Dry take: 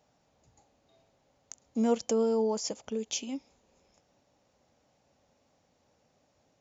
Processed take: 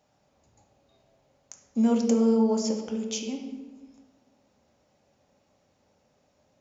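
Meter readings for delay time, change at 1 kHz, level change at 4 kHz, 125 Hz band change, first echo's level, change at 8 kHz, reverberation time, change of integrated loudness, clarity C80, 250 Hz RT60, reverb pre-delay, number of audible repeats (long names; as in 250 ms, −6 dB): no echo audible, +1.5 dB, +1.0 dB, can't be measured, no echo audible, can't be measured, 1.3 s, +5.0 dB, 7.0 dB, 1.5 s, 3 ms, no echo audible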